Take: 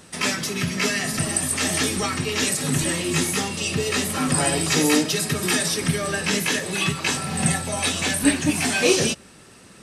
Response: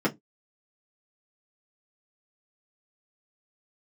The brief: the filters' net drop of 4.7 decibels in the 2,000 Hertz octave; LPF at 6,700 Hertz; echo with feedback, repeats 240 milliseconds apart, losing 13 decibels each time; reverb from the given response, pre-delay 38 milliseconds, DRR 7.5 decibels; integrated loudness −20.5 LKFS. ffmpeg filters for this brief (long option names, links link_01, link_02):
-filter_complex "[0:a]lowpass=6700,equalizer=frequency=2000:width_type=o:gain=-6,aecho=1:1:240|480|720:0.224|0.0493|0.0108,asplit=2[link_01][link_02];[1:a]atrim=start_sample=2205,adelay=38[link_03];[link_02][link_03]afir=irnorm=-1:irlink=0,volume=-19.5dB[link_04];[link_01][link_04]amix=inputs=2:normalize=0,volume=1dB"